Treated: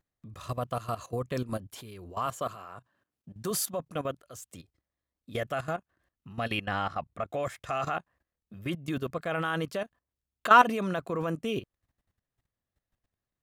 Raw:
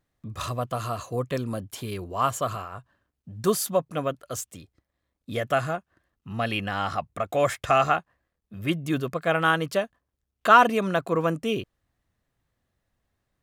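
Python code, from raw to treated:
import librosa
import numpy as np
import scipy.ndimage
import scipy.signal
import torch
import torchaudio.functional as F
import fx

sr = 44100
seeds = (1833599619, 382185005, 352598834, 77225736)

y = fx.highpass(x, sr, hz=140.0, slope=12, at=(2.26, 3.51))
y = fx.high_shelf(y, sr, hz=5200.0, db=-8.5, at=(6.65, 7.43))
y = fx.level_steps(y, sr, step_db=15)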